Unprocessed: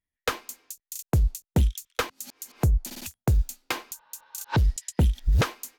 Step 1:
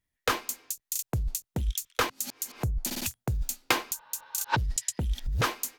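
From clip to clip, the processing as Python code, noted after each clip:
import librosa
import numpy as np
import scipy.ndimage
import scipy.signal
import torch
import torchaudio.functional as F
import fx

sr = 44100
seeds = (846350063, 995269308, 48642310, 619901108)

y = fx.over_compress(x, sr, threshold_db=-26.0, ratio=-1.0)
y = fx.peak_eq(y, sr, hz=120.0, db=6.0, octaves=0.29)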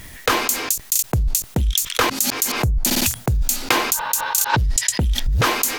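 y = fx.env_flatten(x, sr, amount_pct=70)
y = F.gain(torch.from_numpy(y), 5.5).numpy()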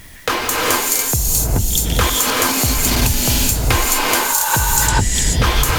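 y = fx.rev_gated(x, sr, seeds[0], gate_ms=460, shape='rising', drr_db=-3.5)
y = F.gain(torch.from_numpy(y), -1.0).numpy()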